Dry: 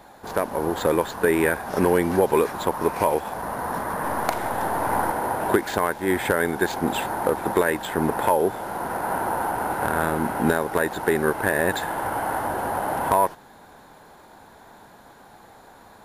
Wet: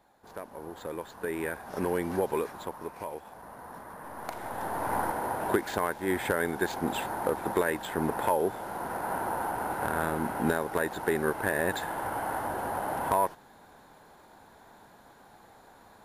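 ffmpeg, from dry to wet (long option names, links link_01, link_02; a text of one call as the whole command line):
ffmpeg -i in.wav -af "volume=1.5dB,afade=type=in:start_time=0.87:duration=1.31:silence=0.398107,afade=type=out:start_time=2.18:duration=0.72:silence=0.398107,afade=type=in:start_time=4.12:duration=0.83:silence=0.298538" out.wav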